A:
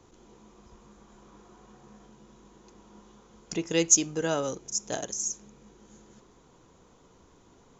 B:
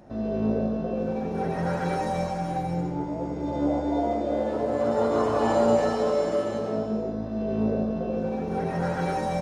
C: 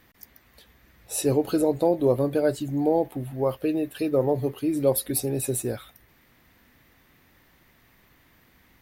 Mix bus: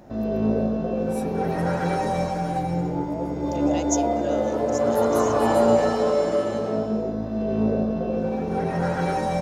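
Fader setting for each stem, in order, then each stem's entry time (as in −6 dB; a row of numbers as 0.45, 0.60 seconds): −8.5, +3.0, −15.0 decibels; 0.00, 0.00, 0.00 seconds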